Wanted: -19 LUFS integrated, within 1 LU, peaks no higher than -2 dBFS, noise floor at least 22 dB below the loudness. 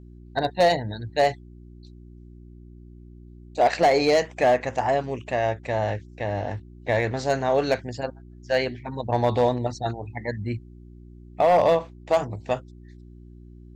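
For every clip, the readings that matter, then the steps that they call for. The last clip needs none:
clipped 0.5%; flat tops at -12.5 dBFS; hum 60 Hz; harmonics up to 360 Hz; hum level -41 dBFS; loudness -24.5 LUFS; peak -12.5 dBFS; loudness target -19.0 LUFS
-> clip repair -12.5 dBFS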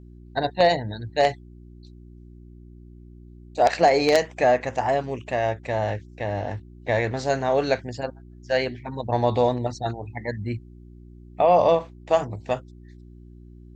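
clipped 0.0%; hum 60 Hz; harmonics up to 360 Hz; hum level -41 dBFS
-> de-hum 60 Hz, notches 6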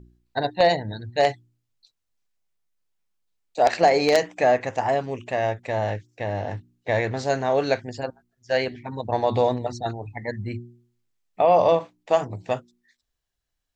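hum none; loudness -24.0 LUFS; peak -3.5 dBFS; loudness target -19.0 LUFS
-> gain +5 dB; limiter -2 dBFS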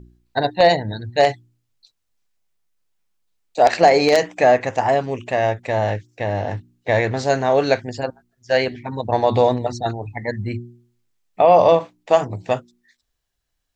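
loudness -19.0 LUFS; peak -2.0 dBFS; noise floor -74 dBFS

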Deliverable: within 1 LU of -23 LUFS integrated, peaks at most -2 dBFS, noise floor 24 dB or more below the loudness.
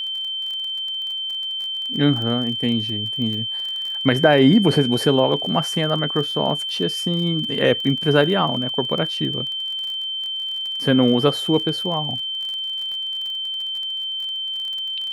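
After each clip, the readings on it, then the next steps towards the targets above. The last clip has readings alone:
ticks 30/s; steady tone 3100 Hz; tone level -24 dBFS; loudness -20.5 LUFS; peak -2.5 dBFS; loudness target -23.0 LUFS
-> de-click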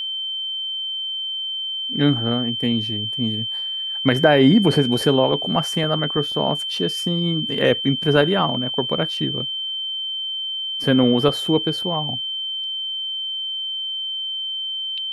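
ticks 0/s; steady tone 3100 Hz; tone level -24 dBFS
-> notch 3100 Hz, Q 30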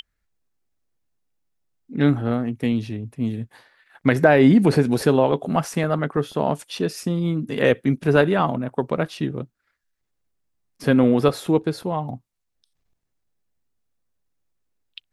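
steady tone none; loudness -21.0 LUFS; peak -2.5 dBFS; loudness target -23.0 LUFS
-> gain -2 dB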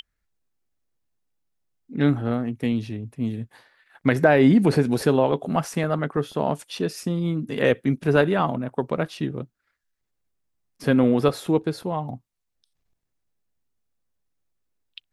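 loudness -23.0 LUFS; peak -4.5 dBFS; noise floor -78 dBFS

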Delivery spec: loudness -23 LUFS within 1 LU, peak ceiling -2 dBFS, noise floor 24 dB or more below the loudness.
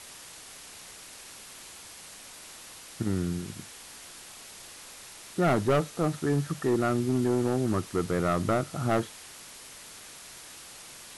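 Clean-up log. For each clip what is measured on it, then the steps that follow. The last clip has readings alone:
clipped 1.0%; flat tops at -19.0 dBFS; noise floor -47 dBFS; noise floor target -53 dBFS; loudness -28.5 LUFS; peak -19.0 dBFS; loudness target -23.0 LUFS
-> clip repair -19 dBFS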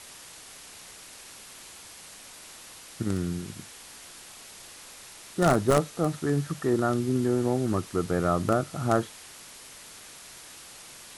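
clipped 0.0%; noise floor -47 dBFS; noise floor target -51 dBFS
-> denoiser 6 dB, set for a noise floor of -47 dBFS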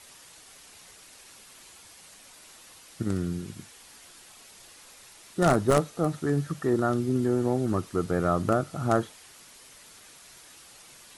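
noise floor -52 dBFS; loudness -27.0 LUFS; peak -10.0 dBFS; loudness target -23.0 LUFS
-> gain +4 dB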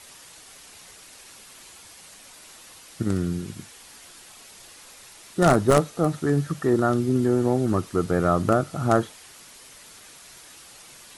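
loudness -23.0 LUFS; peak -6.0 dBFS; noise floor -48 dBFS

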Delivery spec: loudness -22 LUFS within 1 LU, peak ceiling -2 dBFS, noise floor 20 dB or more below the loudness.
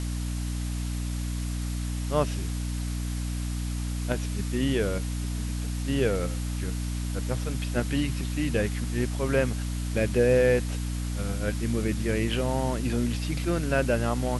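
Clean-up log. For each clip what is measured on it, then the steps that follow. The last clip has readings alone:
hum 60 Hz; harmonics up to 300 Hz; hum level -28 dBFS; noise floor -31 dBFS; noise floor target -49 dBFS; loudness -28.5 LUFS; peak -9.5 dBFS; loudness target -22.0 LUFS
-> de-hum 60 Hz, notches 5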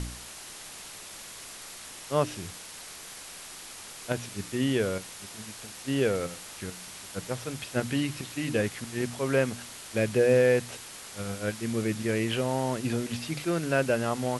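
hum none; noise floor -44 dBFS; noise floor target -50 dBFS
-> denoiser 6 dB, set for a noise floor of -44 dBFS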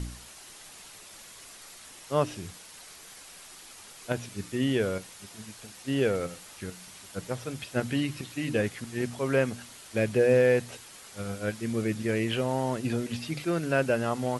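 noise floor -49 dBFS; loudness -29.0 LUFS; peak -10.5 dBFS; loudness target -22.0 LUFS
-> gain +7 dB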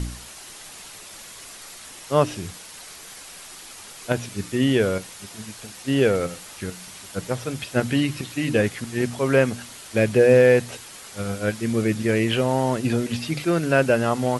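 loudness -22.0 LUFS; peak -3.5 dBFS; noise floor -42 dBFS

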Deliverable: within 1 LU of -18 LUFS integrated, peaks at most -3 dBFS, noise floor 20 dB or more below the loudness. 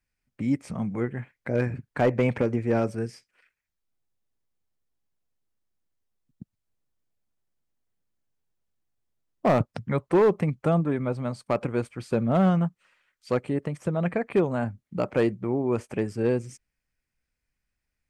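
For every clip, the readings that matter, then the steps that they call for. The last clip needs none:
clipped 0.3%; flat tops at -14.5 dBFS; loudness -26.5 LUFS; peak -14.5 dBFS; loudness target -18.0 LUFS
-> clip repair -14.5 dBFS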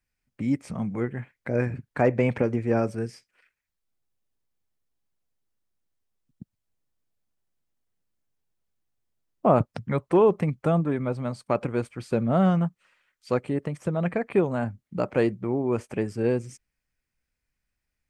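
clipped 0.0%; loudness -26.0 LUFS; peak -6.0 dBFS; loudness target -18.0 LUFS
-> gain +8 dB; limiter -3 dBFS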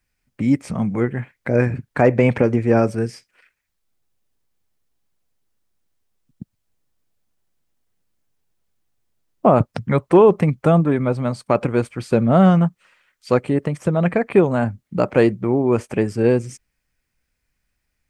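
loudness -18.5 LUFS; peak -3.0 dBFS; noise floor -75 dBFS

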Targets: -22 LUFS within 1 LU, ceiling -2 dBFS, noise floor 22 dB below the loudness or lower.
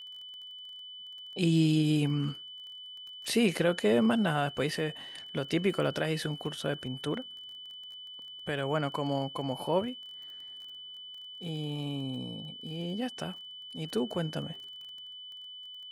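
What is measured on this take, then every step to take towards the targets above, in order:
ticks 23/s; steady tone 3000 Hz; tone level -43 dBFS; loudness -31.5 LUFS; peak -14.0 dBFS; loudness target -22.0 LUFS
-> de-click; notch 3000 Hz, Q 30; gain +9.5 dB

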